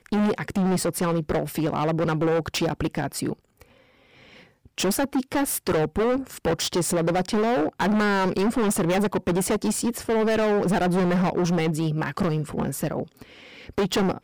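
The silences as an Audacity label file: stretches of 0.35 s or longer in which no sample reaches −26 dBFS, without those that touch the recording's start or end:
3.330000	4.780000	silence
13.030000	13.690000	silence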